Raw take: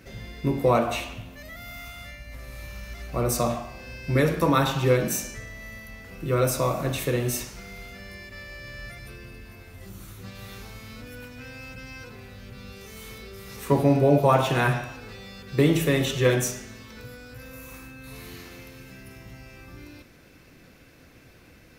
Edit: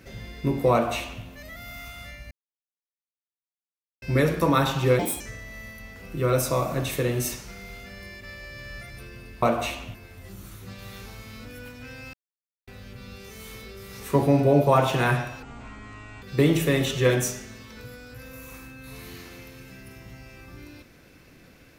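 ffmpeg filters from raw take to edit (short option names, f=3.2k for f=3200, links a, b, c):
-filter_complex "[0:a]asplit=11[a][b][c][d][e][f][g][h][i][j][k];[a]atrim=end=2.31,asetpts=PTS-STARTPTS,afade=t=out:st=2.306:d=0.004:c=hsin[l];[b]atrim=start=2.31:end=4.02,asetpts=PTS-STARTPTS,volume=0[m];[c]atrim=start=4.02:end=4.994,asetpts=PTS-STARTPTS,afade=t=in:d=0.004:c=hsin[n];[d]atrim=start=4.99:end=5.29,asetpts=PTS-STARTPTS,asetrate=61740,aresample=44100[o];[e]atrim=start=5.286:end=9.512[p];[f]atrim=start=0.718:end=1.242[q];[g]atrim=start=9.508:end=11.7,asetpts=PTS-STARTPTS,afade=t=out:st=2.188:d=0.004:c=hsin[r];[h]atrim=start=11.7:end=12.24,asetpts=PTS-STARTPTS,volume=0[s];[i]atrim=start=12.24:end=14.994,asetpts=PTS-STARTPTS,afade=t=in:d=0.004:c=hsin[t];[j]atrim=start=14.99:end=15.42,asetpts=PTS-STARTPTS,asetrate=23814,aresample=44100[u];[k]atrim=start=15.416[v];[l][m][n]concat=n=3:v=0:a=1[w];[w][o]acrossfade=d=0.004:c1=hsin:c2=hsin[x];[x][p]acrossfade=d=0.004:c1=hsin:c2=hsin[y];[y][q]acrossfade=d=0.004:c1=hsin:c2=hsin[z];[r][s][t]concat=n=3:v=0:a=1[aa];[z][aa]acrossfade=d=0.004:c1=hsin:c2=hsin[ab];[ab][u]acrossfade=d=0.004:c1=hsin:c2=hsin[ac];[ac][v]acrossfade=d=0.004:c1=hsin:c2=hsin"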